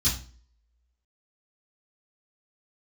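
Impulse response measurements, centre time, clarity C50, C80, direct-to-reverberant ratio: 30 ms, 7.5 dB, 13.5 dB, -13.0 dB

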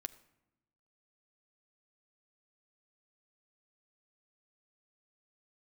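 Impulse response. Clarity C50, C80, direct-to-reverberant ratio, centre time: 17.0 dB, 18.5 dB, 10.5 dB, 4 ms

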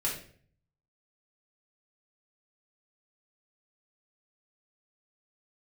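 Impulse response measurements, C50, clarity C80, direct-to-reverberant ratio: 5.0 dB, 10.0 dB, -4.5 dB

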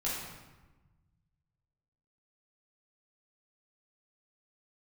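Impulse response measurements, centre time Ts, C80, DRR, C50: 74 ms, 3.0 dB, -8.5 dB, 0.5 dB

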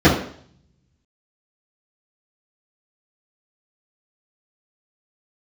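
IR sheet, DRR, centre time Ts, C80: -12.0 dB, 36 ms, 10.5 dB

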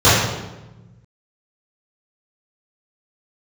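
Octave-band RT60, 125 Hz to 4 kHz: 2.0 s, 1.7 s, 1.1 s, 1.0 s, 0.85 s, 0.80 s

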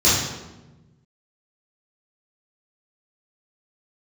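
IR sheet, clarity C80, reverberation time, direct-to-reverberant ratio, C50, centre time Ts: 4.0 dB, 1.1 s, -11.0 dB, 0.0 dB, 73 ms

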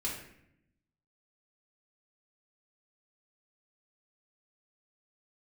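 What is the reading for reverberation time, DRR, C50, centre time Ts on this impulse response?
0.75 s, -6.0 dB, 3.5 dB, 42 ms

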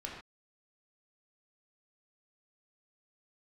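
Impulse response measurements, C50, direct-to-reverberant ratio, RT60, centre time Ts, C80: 3.0 dB, -2.5 dB, no single decay rate, 42 ms, 5.5 dB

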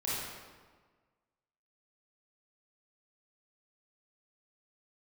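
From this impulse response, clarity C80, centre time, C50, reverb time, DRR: 0.0 dB, 110 ms, -3.5 dB, 1.5 s, -9.0 dB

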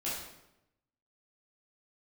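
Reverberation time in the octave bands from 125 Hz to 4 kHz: 1.1 s, 1.0 s, 0.95 s, 0.85 s, 0.75 s, 0.65 s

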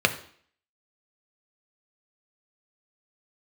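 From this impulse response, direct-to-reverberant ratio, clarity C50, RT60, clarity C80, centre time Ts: 6.5 dB, 14.0 dB, 0.55 s, 17.0 dB, 7 ms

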